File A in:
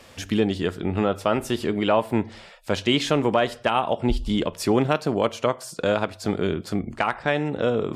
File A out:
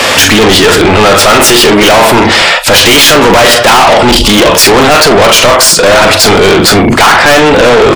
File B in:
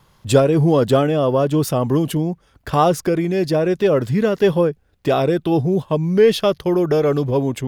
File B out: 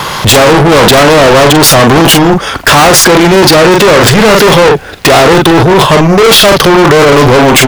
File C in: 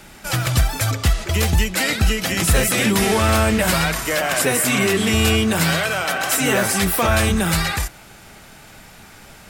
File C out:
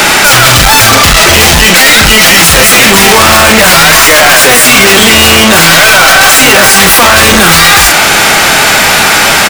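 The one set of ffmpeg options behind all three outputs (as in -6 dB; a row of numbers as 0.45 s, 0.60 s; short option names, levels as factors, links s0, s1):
-filter_complex "[0:a]aeval=exprs='(tanh(12.6*val(0)+0.5)-tanh(0.5))/12.6':c=same,asplit=2[s0][s1];[s1]adelay=42,volume=0.237[s2];[s0][s2]amix=inputs=2:normalize=0,asplit=2[s3][s4];[s4]highpass=f=720:p=1,volume=12.6,asoftclip=type=tanh:threshold=0.15[s5];[s3][s5]amix=inputs=2:normalize=0,lowpass=f=5100:p=1,volume=0.501,apsyclip=44.7,volume=0.841"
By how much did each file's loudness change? +21.0 LU, +14.5 LU, +17.0 LU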